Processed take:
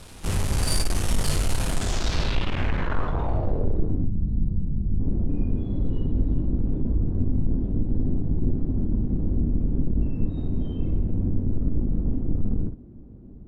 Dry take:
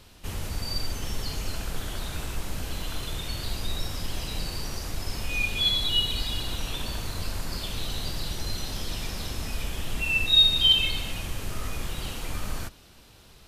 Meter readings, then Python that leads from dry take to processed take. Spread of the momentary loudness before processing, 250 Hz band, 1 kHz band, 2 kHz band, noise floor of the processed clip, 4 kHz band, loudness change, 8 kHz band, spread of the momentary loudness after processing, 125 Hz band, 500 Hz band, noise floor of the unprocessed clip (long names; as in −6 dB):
15 LU, +12.5 dB, +3.0 dB, −6.0 dB, −43 dBFS, −14.5 dB, 0.0 dB, can't be measured, 3 LU, +10.0 dB, +6.0 dB, −52 dBFS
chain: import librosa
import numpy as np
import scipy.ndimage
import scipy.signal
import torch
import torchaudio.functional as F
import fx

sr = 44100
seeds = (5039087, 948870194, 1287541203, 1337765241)

p1 = fx.halfwave_hold(x, sr)
p2 = fx.spec_box(p1, sr, start_s=4.05, length_s=0.95, low_hz=220.0, high_hz=3400.0, gain_db=-12)
p3 = 10.0 ** (-22.0 / 20.0) * (np.abs((p2 / 10.0 ** (-22.0 / 20.0) + 3.0) % 4.0 - 2.0) - 1.0)
p4 = p2 + F.gain(torch.from_numpy(p3), -10.5).numpy()
p5 = fx.room_early_taps(p4, sr, ms=(20, 55), db=(-8.5, -7.0))
y = fx.filter_sweep_lowpass(p5, sr, from_hz=10000.0, to_hz=270.0, start_s=1.71, end_s=3.99, q=2.2)